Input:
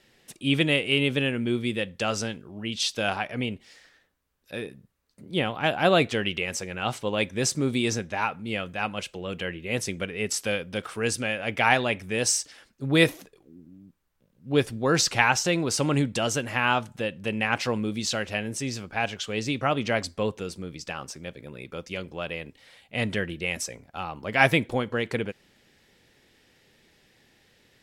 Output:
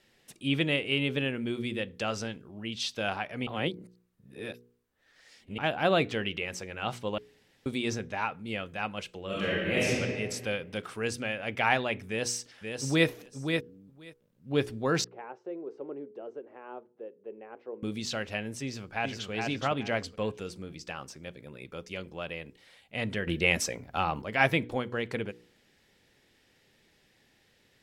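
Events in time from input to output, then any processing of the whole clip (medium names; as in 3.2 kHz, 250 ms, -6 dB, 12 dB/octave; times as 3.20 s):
3.47–5.58 s: reverse
7.18–7.66 s: room tone
9.26–9.89 s: reverb throw, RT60 1.8 s, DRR -8.5 dB
12.08–13.07 s: echo throw 530 ms, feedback 10%, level -5.5 dB
15.04–17.83 s: ladder band-pass 440 Hz, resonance 65%
18.62–19.31 s: echo throw 420 ms, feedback 25%, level -3.5 dB
23.27–24.22 s: gain +9.5 dB
whole clip: de-hum 60.25 Hz, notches 8; dynamic bell 9.1 kHz, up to -7 dB, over -46 dBFS, Q 0.81; trim -4.5 dB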